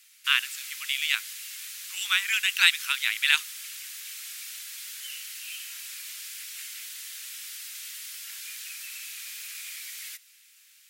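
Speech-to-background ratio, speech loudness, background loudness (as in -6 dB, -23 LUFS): 13.0 dB, -24.0 LUFS, -37.0 LUFS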